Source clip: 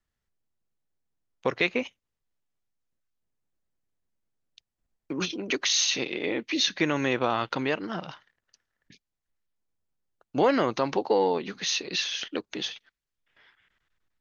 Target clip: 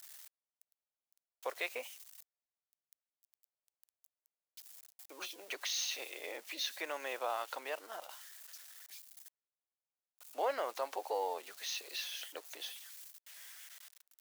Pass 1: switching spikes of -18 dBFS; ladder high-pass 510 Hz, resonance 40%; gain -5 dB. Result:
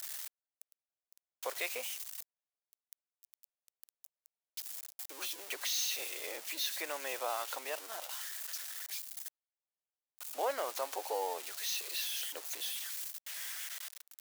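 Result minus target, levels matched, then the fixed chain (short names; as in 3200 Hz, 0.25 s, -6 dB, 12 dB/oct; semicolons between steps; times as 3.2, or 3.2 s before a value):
switching spikes: distortion +11 dB
switching spikes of -29 dBFS; ladder high-pass 510 Hz, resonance 40%; gain -5 dB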